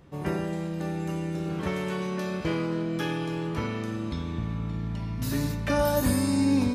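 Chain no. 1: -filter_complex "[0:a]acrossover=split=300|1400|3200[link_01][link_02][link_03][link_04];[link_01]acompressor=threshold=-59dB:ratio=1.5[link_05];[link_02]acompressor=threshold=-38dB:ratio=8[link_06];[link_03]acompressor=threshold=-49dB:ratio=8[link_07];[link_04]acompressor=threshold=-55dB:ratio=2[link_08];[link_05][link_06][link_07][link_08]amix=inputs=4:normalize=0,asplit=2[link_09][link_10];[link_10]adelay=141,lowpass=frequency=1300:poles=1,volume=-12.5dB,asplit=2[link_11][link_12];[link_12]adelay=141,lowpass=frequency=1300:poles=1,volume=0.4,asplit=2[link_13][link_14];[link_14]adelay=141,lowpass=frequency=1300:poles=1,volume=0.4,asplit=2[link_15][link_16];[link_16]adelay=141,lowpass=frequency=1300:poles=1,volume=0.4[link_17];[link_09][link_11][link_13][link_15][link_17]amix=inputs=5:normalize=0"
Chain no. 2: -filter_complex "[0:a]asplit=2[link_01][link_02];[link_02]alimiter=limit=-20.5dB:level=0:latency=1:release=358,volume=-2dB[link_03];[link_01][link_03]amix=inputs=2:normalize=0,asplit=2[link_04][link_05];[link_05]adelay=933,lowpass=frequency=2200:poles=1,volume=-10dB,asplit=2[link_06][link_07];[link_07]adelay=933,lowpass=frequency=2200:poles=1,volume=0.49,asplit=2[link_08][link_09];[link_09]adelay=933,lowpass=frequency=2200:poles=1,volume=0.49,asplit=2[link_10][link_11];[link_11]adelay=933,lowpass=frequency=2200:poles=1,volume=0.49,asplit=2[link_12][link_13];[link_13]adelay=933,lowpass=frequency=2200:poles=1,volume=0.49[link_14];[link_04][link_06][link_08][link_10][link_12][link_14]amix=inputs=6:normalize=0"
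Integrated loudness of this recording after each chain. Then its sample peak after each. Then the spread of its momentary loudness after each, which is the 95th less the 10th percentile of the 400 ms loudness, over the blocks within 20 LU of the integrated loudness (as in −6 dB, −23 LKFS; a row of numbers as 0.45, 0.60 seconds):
−38.0, −25.0 LKFS; −24.0, −10.0 dBFS; 5, 6 LU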